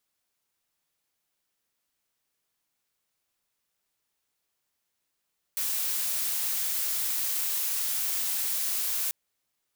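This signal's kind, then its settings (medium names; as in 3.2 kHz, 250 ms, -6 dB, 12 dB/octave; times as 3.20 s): noise blue, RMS -29 dBFS 3.54 s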